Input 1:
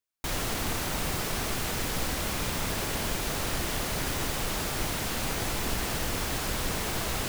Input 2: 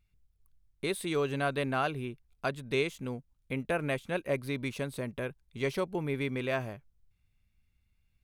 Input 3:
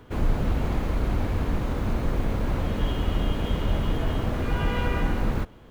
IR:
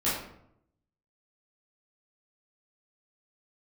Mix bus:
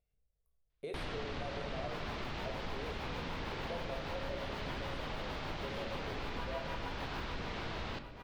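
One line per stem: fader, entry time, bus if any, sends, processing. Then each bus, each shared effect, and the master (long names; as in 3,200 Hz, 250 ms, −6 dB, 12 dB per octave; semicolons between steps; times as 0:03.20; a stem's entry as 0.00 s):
+0.5 dB, 0.70 s, send −18 dB, echo send −22.5 dB, low-pass filter 4,200 Hz 24 dB per octave
−16.5 dB, 0.00 s, send −9 dB, no echo send, flat-topped bell 560 Hz +15 dB 1 octave
−4.0 dB, 1.80 s, send −14 dB, echo send −5.5 dB, high-pass filter 640 Hz; parametric band 920 Hz +8.5 dB; amplitude tremolo 6.5 Hz, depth 99%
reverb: on, RT60 0.75 s, pre-delay 12 ms
echo: repeating echo 748 ms, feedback 31%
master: downward compressor 3 to 1, threshold −41 dBFS, peak gain reduction 14.5 dB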